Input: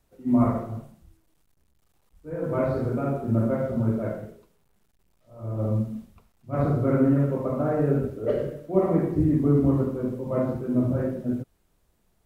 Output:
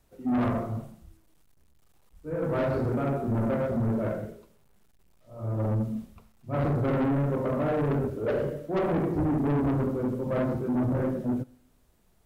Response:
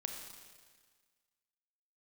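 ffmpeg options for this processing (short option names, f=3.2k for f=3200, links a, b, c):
-filter_complex "[0:a]asoftclip=type=tanh:threshold=-25dB,asplit=2[a][b];[1:a]atrim=start_sample=2205,asetrate=79380,aresample=44100[c];[b][c]afir=irnorm=-1:irlink=0,volume=-11.5dB[d];[a][d]amix=inputs=2:normalize=0,volume=1.5dB"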